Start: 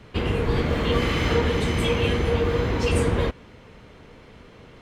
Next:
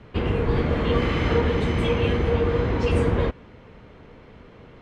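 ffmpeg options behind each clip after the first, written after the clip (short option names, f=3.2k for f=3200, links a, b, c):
-af "aemphasis=mode=reproduction:type=75fm"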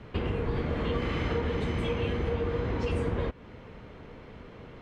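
-af "acompressor=threshold=-30dB:ratio=2.5"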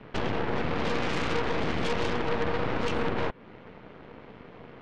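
-af "highpass=140,lowpass=3.2k,aeval=exprs='0.106*(cos(1*acos(clip(val(0)/0.106,-1,1)))-cos(1*PI/2))+0.0335*(cos(8*acos(clip(val(0)/0.106,-1,1)))-cos(8*PI/2))':c=same"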